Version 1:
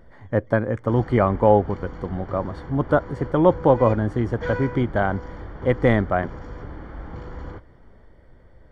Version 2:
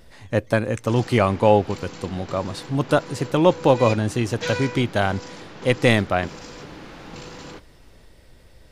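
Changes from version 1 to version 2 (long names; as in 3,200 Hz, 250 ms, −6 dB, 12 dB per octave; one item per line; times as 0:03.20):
second sound: add high-pass filter 130 Hz 24 dB per octave
master: remove Savitzky-Golay smoothing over 41 samples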